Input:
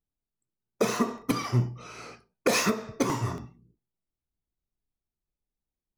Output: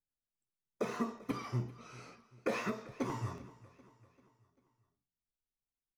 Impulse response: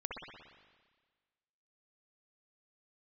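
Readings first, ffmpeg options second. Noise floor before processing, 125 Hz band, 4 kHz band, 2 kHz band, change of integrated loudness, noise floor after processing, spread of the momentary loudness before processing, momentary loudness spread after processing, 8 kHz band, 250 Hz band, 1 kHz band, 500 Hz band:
under -85 dBFS, -10.5 dB, -17.0 dB, -11.5 dB, -11.0 dB, under -85 dBFS, 17 LU, 15 LU, -20.5 dB, -10.0 dB, -10.0 dB, -10.5 dB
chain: -filter_complex "[0:a]acrossover=split=3000[s0][s1];[s1]acompressor=threshold=0.00631:ratio=4:attack=1:release=60[s2];[s0][s2]amix=inputs=2:normalize=0,equalizer=f=15000:t=o:w=0.77:g=-2,flanger=delay=7.1:depth=8.1:regen=61:speed=0.35:shape=triangular,aecho=1:1:392|784|1176|1568:0.1|0.05|0.025|0.0125,volume=0.501"

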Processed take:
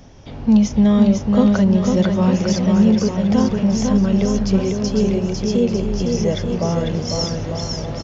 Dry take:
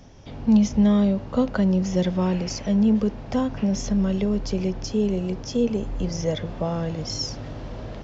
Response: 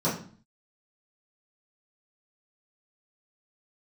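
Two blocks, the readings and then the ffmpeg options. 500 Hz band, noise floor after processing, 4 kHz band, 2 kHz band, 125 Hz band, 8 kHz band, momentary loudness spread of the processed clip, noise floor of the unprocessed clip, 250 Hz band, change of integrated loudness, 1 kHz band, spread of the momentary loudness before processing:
+6.0 dB, -31 dBFS, +6.0 dB, +6.0 dB, +6.5 dB, no reading, 7 LU, -37 dBFS, +6.5 dB, +6.0 dB, +6.0 dB, 10 LU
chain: -af "aresample=16000,aresample=44100,aecho=1:1:500|900|1220|1476|1681:0.631|0.398|0.251|0.158|0.1,volume=1.58"

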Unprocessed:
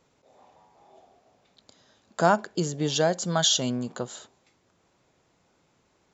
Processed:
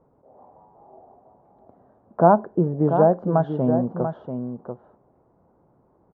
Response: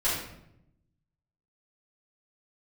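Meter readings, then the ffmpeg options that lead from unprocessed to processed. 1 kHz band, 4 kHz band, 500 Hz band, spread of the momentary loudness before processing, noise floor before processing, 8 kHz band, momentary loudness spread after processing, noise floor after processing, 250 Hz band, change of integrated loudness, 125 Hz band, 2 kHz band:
+6.0 dB, under -35 dB, +7.5 dB, 15 LU, -68 dBFS, no reading, 17 LU, -62 dBFS, +7.5 dB, +4.0 dB, +7.5 dB, -7.0 dB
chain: -af "lowpass=f=1000:w=0.5412,lowpass=f=1000:w=1.3066,aecho=1:1:689:0.398,volume=2.24"

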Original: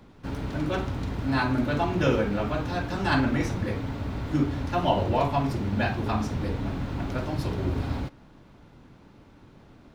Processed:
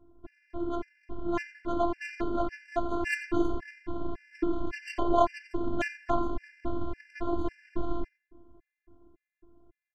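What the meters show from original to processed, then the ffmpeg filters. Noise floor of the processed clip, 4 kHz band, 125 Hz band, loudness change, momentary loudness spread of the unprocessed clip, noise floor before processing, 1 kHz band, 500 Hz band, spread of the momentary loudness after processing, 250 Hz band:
under -85 dBFS, -11.5 dB, -17.0 dB, -5.5 dB, 8 LU, -53 dBFS, -3.5 dB, -3.0 dB, 11 LU, -5.5 dB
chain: -filter_complex "[0:a]dynaudnorm=f=300:g=13:m=1.88,afftfilt=real='hypot(re,im)*cos(PI*b)':imag='0':win_size=512:overlap=0.75,adynamicsmooth=sensitivity=1.5:basefreq=650,asplit=2[s0][s1];[s1]adelay=88,lowpass=f=4800:p=1,volume=0.299,asplit=2[s2][s3];[s3]adelay=88,lowpass=f=4800:p=1,volume=0.25,asplit=2[s4][s5];[s5]adelay=88,lowpass=f=4800:p=1,volume=0.25[s6];[s2][s4][s6]amix=inputs=3:normalize=0[s7];[s0][s7]amix=inputs=2:normalize=0,afftfilt=real='re*gt(sin(2*PI*1.8*pts/sr)*(1-2*mod(floor(b*sr/1024/1500),2)),0)':imag='im*gt(sin(2*PI*1.8*pts/sr)*(1-2*mod(floor(b*sr/1024/1500),2)),0)':win_size=1024:overlap=0.75"

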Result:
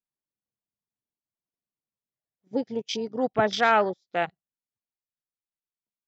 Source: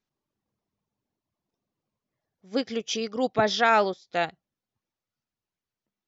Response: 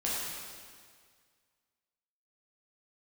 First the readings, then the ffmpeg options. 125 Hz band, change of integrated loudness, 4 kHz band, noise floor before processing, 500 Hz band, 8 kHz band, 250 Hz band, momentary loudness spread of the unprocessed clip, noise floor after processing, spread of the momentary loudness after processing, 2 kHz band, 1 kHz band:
0.0 dB, -0.5 dB, -2.5 dB, under -85 dBFS, 0.0 dB, no reading, 0.0 dB, 10 LU, under -85 dBFS, 11 LU, -0.5 dB, 0.0 dB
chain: -af "afwtdn=0.0251"

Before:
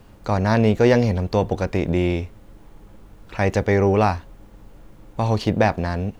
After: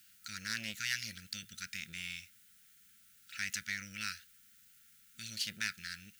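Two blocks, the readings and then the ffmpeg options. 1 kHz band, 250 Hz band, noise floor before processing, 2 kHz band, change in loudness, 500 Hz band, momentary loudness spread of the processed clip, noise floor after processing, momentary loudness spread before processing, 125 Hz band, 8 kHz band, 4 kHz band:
-29.0 dB, -31.5 dB, -47 dBFS, -9.5 dB, -19.5 dB, under -40 dB, 12 LU, -64 dBFS, 11 LU, -33.5 dB, no reading, -3.5 dB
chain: -af "afftfilt=real='re*(1-between(b*sr/4096,230,1300))':imag='im*(1-between(b*sr/4096,230,1300))':win_size=4096:overlap=0.75,aeval=exprs='(tanh(5.62*val(0)+0.45)-tanh(0.45))/5.62':c=same,aderivative,volume=1.58"

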